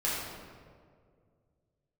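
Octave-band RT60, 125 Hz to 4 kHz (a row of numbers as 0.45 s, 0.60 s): 2.9 s, 2.4 s, 2.4 s, 1.7 s, 1.4 s, 1.1 s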